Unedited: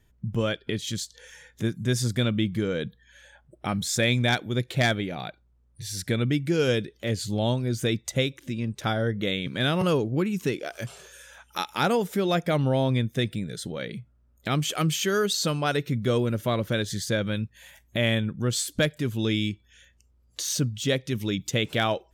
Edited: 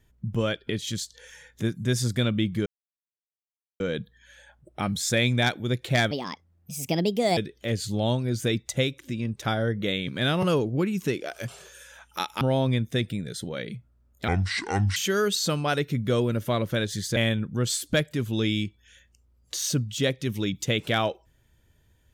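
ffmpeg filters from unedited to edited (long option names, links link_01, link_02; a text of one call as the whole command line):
ffmpeg -i in.wav -filter_complex "[0:a]asplit=8[link_01][link_02][link_03][link_04][link_05][link_06][link_07][link_08];[link_01]atrim=end=2.66,asetpts=PTS-STARTPTS,afade=type=out:start_time=2.656:duration=0.004:curve=hsin,apad=pad_dur=1.14[link_09];[link_02]atrim=start=2.66:end=4.974,asetpts=PTS-STARTPTS,afade=type=in:duration=0.004:curve=hsin[link_10];[link_03]atrim=start=4.97:end=6.76,asetpts=PTS-STARTPTS,asetrate=62622,aresample=44100[link_11];[link_04]atrim=start=6.756:end=11.802[link_12];[link_05]atrim=start=12.638:end=14.514[link_13];[link_06]atrim=start=14.51:end=14.94,asetpts=PTS-STARTPTS,asetrate=27783,aresample=44100[link_14];[link_07]atrim=start=14.936:end=17.142[link_15];[link_08]atrim=start=18.018[link_16];[link_09][link_10]concat=n=2:v=0:a=1[link_17];[link_17][link_11]acrossfade=duration=0.004:curve1=hsin:curve2=hsin[link_18];[link_18][link_12]acrossfade=duration=0.004:curve1=hsin:curve2=hsin[link_19];[link_19][link_13]acrossfade=duration=0.004:curve1=hsin:curve2=hsin[link_20];[link_20][link_14]acrossfade=duration=0.004:curve1=hsin:curve2=hsin[link_21];[link_21][link_15]acrossfade=duration=0.004:curve1=hsin:curve2=hsin[link_22];[link_22][link_16]acrossfade=duration=0.004:curve1=hsin:curve2=hsin" out.wav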